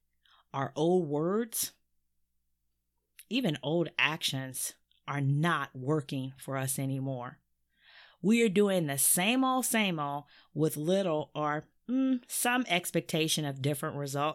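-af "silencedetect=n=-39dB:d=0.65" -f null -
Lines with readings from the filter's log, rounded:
silence_start: 1.68
silence_end: 3.19 | silence_duration: 1.51
silence_start: 7.29
silence_end: 8.24 | silence_duration: 0.95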